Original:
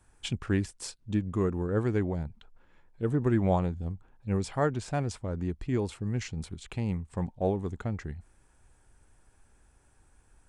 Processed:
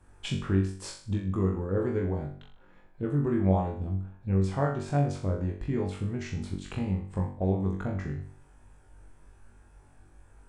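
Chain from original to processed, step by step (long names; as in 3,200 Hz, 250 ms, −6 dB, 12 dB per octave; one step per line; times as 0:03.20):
high-shelf EQ 2,600 Hz −10 dB
downward compressor 2.5 to 1, threshold −34 dBFS, peak gain reduction 9 dB
on a send: flutter between parallel walls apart 3.6 metres, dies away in 0.48 s
on the sum: level +4 dB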